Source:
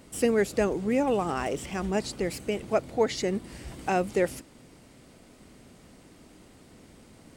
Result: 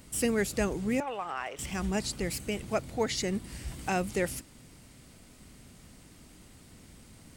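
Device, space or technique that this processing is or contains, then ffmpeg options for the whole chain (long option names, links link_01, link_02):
smiley-face EQ: -filter_complex "[0:a]lowshelf=frequency=200:gain=4.5,equalizer=frequency=450:width_type=o:width=2.3:gain=-7,highshelf=frequency=7400:gain=6.5,asettb=1/sr,asplit=3[link_01][link_02][link_03];[link_01]atrim=end=1.004[link_04];[link_02]atrim=start=1:end=1.59,asetpts=PTS-STARTPTS,afade=type=in:duration=0.004:curve=qsin,afade=type=out:start_time=0.586:duration=0.004:curve=qsin,acrossover=split=520 3300:gain=0.0891 1 0.126[link_05][link_06][link_07];[link_05][link_06][link_07]amix=inputs=3:normalize=0[link_08];[link_03]atrim=start=1.586[link_09];[link_04][link_08]acrossfade=duration=0.004:curve1=hsin:curve2=qsin[link_10];[link_10][link_09]acrossfade=duration=0.004:curve1=qsin:curve2=hsin"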